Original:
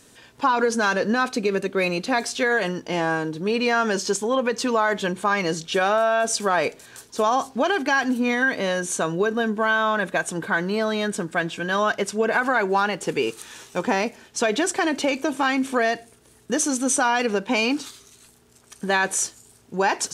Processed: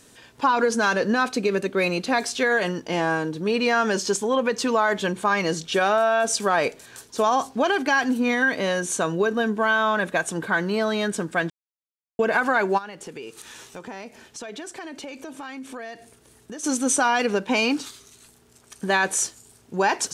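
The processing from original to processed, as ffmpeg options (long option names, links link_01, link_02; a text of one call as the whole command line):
ffmpeg -i in.wav -filter_complex "[0:a]asplit=3[link_01][link_02][link_03];[link_01]afade=type=out:start_time=12.77:duration=0.02[link_04];[link_02]acompressor=threshold=-38dB:ratio=3:attack=3.2:release=140:knee=1:detection=peak,afade=type=in:start_time=12.77:duration=0.02,afade=type=out:start_time=16.63:duration=0.02[link_05];[link_03]afade=type=in:start_time=16.63:duration=0.02[link_06];[link_04][link_05][link_06]amix=inputs=3:normalize=0,asplit=3[link_07][link_08][link_09];[link_07]atrim=end=11.5,asetpts=PTS-STARTPTS,afade=type=out:start_time=11.496:duration=0.004:curve=hsin[link_10];[link_08]atrim=start=11.5:end=12.19,asetpts=PTS-STARTPTS,volume=0[link_11];[link_09]atrim=start=12.19,asetpts=PTS-STARTPTS,afade=type=in:duration=0.004:curve=hsin[link_12];[link_10][link_11][link_12]concat=n=3:v=0:a=1" out.wav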